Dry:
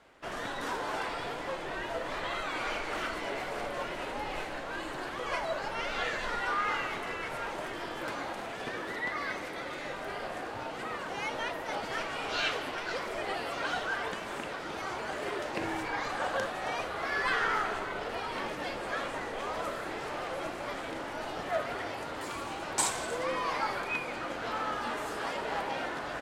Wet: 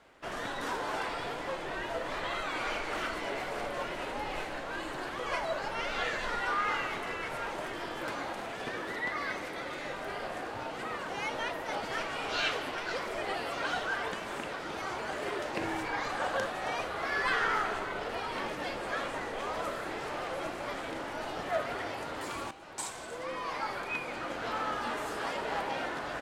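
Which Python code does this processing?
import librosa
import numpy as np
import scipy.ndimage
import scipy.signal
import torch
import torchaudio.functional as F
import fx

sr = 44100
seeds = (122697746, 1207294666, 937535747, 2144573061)

y = fx.edit(x, sr, fx.fade_in_from(start_s=22.51, length_s=1.9, floor_db=-13.5), tone=tone)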